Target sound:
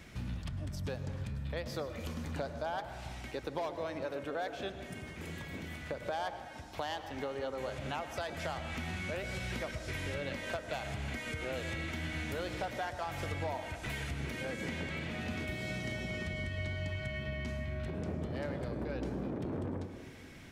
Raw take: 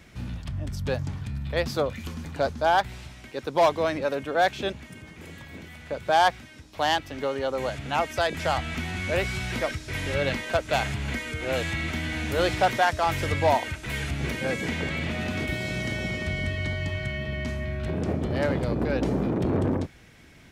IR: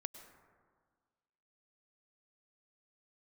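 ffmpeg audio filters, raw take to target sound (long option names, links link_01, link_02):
-filter_complex "[0:a]acompressor=threshold=-35dB:ratio=6[link_01];[1:a]atrim=start_sample=2205[link_02];[link_01][link_02]afir=irnorm=-1:irlink=0,volume=2.5dB"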